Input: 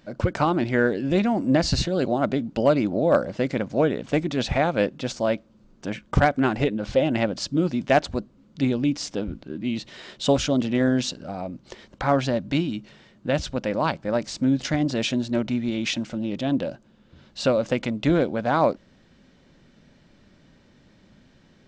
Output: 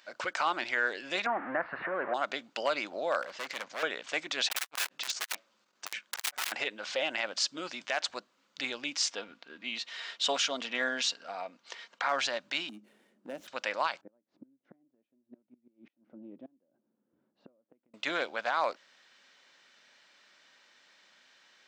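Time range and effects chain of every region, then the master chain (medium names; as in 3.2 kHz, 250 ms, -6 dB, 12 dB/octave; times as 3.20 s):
1.26–2.14 s: jump at every zero crossing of -27 dBFS + steep low-pass 1.8 kHz + three bands compressed up and down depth 70%
3.22–3.83 s: low-pass 7.7 kHz + hard clipper -27 dBFS
4.48–6.52 s: bass shelf 62 Hz +4 dB + integer overflow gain 22.5 dB + transformer saturation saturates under 430 Hz
9.11–12.09 s: treble shelf 6.3 kHz -8.5 dB + comb 4.3 ms, depth 36%
12.69–13.48 s: median filter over 9 samples + FFT filter 140 Hz 0 dB, 210 Hz +14 dB, 390 Hz +6 dB, 1.1 kHz -14 dB, 3.8 kHz -17 dB, 6 kHz -12 dB + compression 2:1, threshold -23 dBFS
14.01–17.94 s: inverted gate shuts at -17 dBFS, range -29 dB + resonant low-pass 280 Hz, resonance Q 1.7
whole clip: high-pass 1.2 kHz 12 dB/octave; peak limiter -21 dBFS; trim +3 dB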